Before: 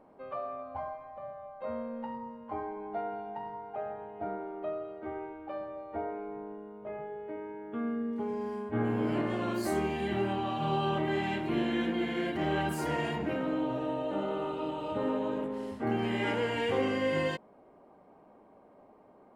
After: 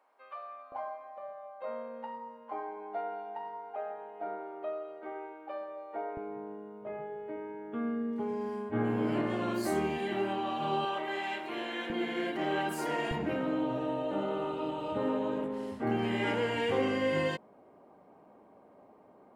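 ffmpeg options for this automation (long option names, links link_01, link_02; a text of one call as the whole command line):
ffmpeg -i in.wav -af "asetnsamples=nb_out_samples=441:pad=0,asendcmd='0.72 highpass f 420;6.17 highpass f 100;9.98 highpass f 240;10.85 highpass f 550;11.9 highpass f 260;13.11 highpass f 71',highpass=1200" out.wav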